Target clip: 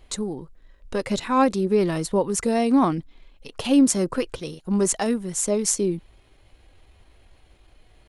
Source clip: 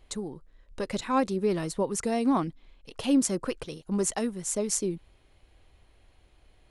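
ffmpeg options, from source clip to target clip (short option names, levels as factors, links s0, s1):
-af "atempo=0.83,volume=2"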